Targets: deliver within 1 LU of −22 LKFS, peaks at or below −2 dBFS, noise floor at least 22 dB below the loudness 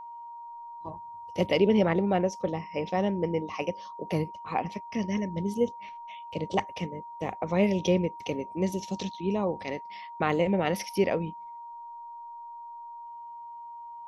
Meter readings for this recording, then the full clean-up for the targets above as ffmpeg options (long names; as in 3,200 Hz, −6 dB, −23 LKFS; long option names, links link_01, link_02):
interfering tone 940 Hz; level of the tone −40 dBFS; integrated loudness −29.0 LKFS; sample peak −10.5 dBFS; target loudness −22.0 LKFS
→ -af "bandreject=frequency=940:width=30"
-af "volume=7dB"